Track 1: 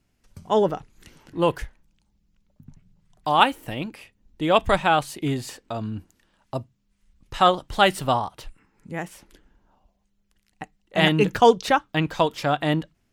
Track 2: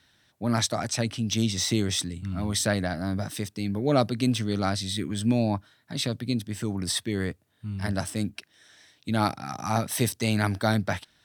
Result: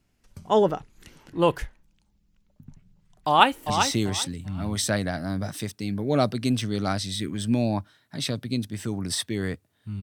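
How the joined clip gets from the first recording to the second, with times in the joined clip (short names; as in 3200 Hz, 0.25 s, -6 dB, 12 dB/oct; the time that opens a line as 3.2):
track 1
3.27–3.7 echo throw 0.39 s, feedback 20%, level -7 dB
3.7 switch to track 2 from 1.47 s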